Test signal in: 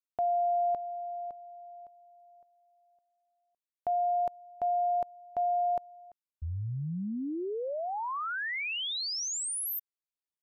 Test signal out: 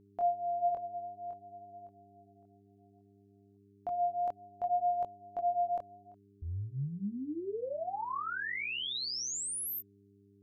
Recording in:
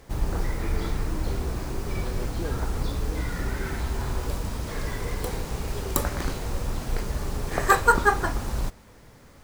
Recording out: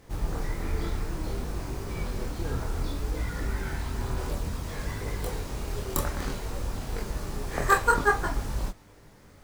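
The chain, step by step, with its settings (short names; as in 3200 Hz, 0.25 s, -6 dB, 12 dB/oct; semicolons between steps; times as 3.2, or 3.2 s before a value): chorus voices 2, 0.59 Hz, delay 23 ms, depth 3.5 ms; buzz 100 Hz, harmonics 4, -63 dBFS -1 dB/oct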